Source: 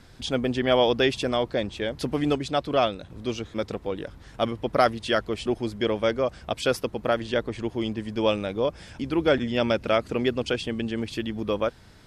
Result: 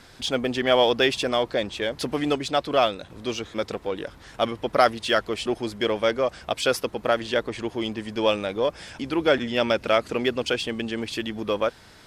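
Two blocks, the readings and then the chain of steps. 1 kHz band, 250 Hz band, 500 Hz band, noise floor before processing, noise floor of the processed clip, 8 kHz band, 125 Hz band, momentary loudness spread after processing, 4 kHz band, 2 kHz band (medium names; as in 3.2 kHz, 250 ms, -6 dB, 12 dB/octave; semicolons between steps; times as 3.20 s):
+2.5 dB, -1.0 dB, +1.5 dB, -50 dBFS, -50 dBFS, +5.0 dB, -4.0 dB, 9 LU, +3.5 dB, +3.5 dB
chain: bass shelf 270 Hz -11 dB; in parallel at -7 dB: saturation -36.5 dBFS, distortion -2 dB; on the sum: trim +3 dB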